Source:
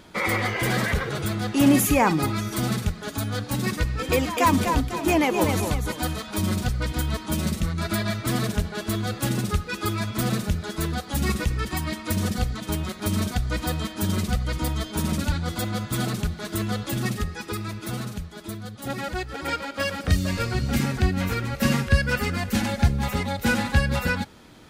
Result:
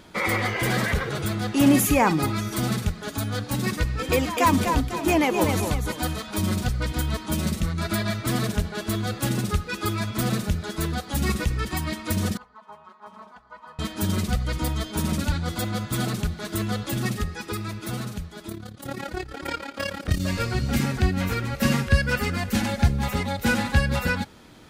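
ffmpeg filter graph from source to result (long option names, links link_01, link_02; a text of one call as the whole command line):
ffmpeg -i in.wav -filter_complex "[0:a]asettb=1/sr,asplit=3[link_01][link_02][link_03];[link_01]atrim=end=12.374[link_04];[link_02]atrim=start=12.37:end=13.79,asetpts=PTS-STARTPTS,afade=type=in:duration=0.004:curve=qsin,afade=type=out:start_time=1.416:duration=0.004:curve=qsin,bandpass=frequency=960:width_type=q:width=8,aecho=1:1:4.7:0.93,atrim=end_sample=62622[link_05];[link_03]atrim=start=13.786[link_06];[link_04][link_05]acrossfade=duration=0.004:curve1=hsin:curve2=qsin[link_07];[link_07][link_06]acrossfade=duration=0.004:curve1=qsin:curve2=hsin,asettb=1/sr,asplit=3[link_08][link_09][link_10];[link_08]atrim=end=18.494[link_11];[link_09]atrim=start=18.49:end=20.2,asetpts=PTS-STARTPTS,afade=type=in:duration=0.004:curve=qsin,afade=type=out:start_time=1.706:duration=0.004:curve=qsin,equalizer=frequency=340:width=6.9:gain=7,tremolo=f=35:d=0.75[link_12];[link_10]atrim=start=20.196[link_13];[link_11][link_12]acrossfade=duration=0.004:curve1=hsin:curve2=qsin[link_14];[link_14][link_13]acrossfade=duration=0.004:curve1=qsin:curve2=hsin" out.wav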